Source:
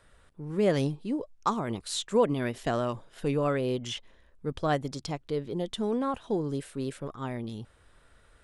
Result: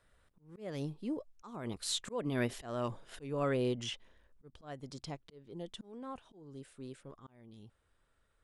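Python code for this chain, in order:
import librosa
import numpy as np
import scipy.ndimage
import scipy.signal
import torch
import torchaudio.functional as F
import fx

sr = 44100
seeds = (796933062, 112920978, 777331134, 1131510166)

y = fx.doppler_pass(x, sr, speed_mps=8, closest_m=7.2, pass_at_s=2.72)
y = fx.auto_swell(y, sr, attack_ms=365.0)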